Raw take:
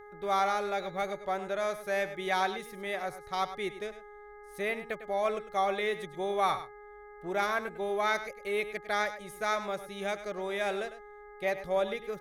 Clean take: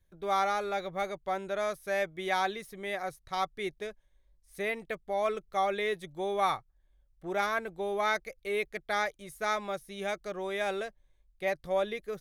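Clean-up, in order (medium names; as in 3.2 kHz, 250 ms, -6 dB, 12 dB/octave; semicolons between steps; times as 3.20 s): de-hum 414.9 Hz, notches 5; inverse comb 102 ms -12.5 dB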